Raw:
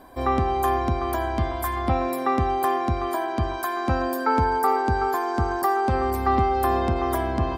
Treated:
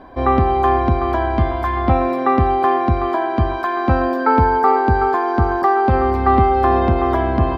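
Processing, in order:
high-frequency loss of the air 260 metres
level +8 dB

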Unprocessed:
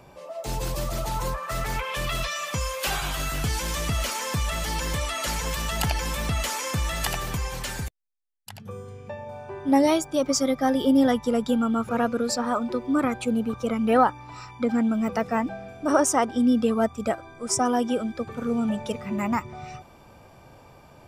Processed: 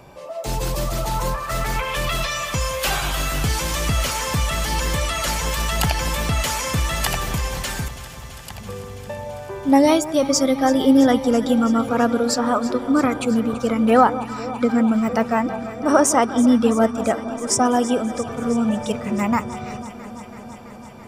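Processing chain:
delay that swaps between a low-pass and a high-pass 166 ms, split 1,200 Hz, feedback 88%, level −14 dB
level +5 dB

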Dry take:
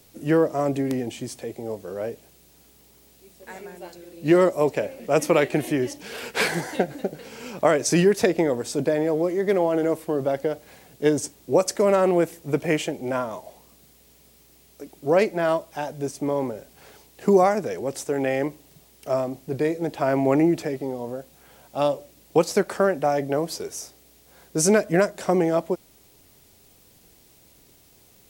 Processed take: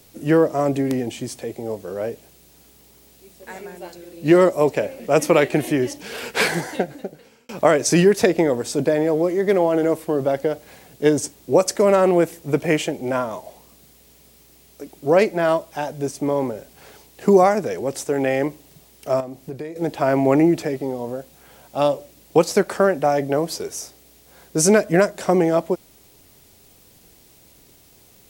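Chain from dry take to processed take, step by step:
0:06.51–0:07.49: fade out
0:19.20–0:19.76: downward compressor 6 to 1, threshold −33 dBFS, peak gain reduction 14 dB
level +3.5 dB

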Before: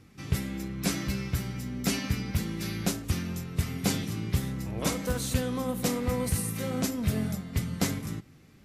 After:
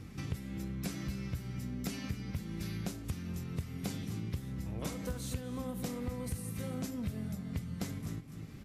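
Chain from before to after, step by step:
low-shelf EQ 220 Hz +7 dB
on a send: single-tap delay 249 ms −16 dB
on the sum: downward compressor 4 to 1, threshold −42 dBFS, peak gain reduction 22 dB
level +3.5 dB

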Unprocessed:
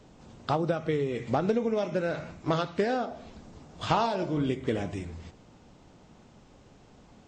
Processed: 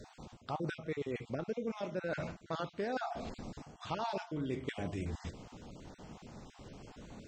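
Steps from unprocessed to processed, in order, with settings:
time-frequency cells dropped at random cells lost 21%
reversed playback
downward compressor 6 to 1, threshold −40 dBFS, peak gain reduction 18 dB
reversed playback
level +4.5 dB

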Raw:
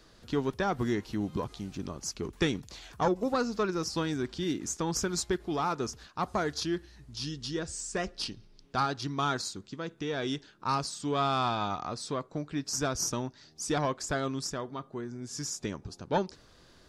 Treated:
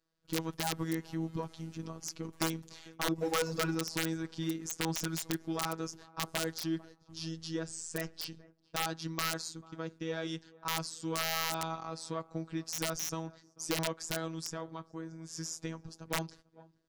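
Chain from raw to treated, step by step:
noise gate −48 dBFS, range −22 dB
parametric band 3,900 Hz −2.5 dB 0.57 octaves
tape delay 444 ms, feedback 52%, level −21.5 dB, low-pass 1,100 Hz
phases set to zero 162 Hz
wrap-around overflow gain 19 dB
0:03.18–0:03.75: power curve on the samples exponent 0.7
level −2 dB

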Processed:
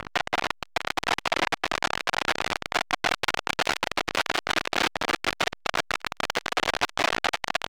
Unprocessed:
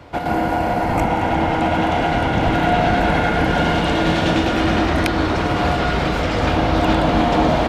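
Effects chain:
high-pass filter 270 Hz 6 dB per octave
brickwall limiter −12.5 dBFS, peak gain reduction 9 dB
automatic gain control gain up to 4 dB
mid-hump overdrive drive 29 dB, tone 4,300 Hz, clips at −8.5 dBFS
background noise brown −28 dBFS
double-tracking delay 31 ms −12 dB
single-tap delay 72 ms −21 dB
saturating transformer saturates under 3,500 Hz

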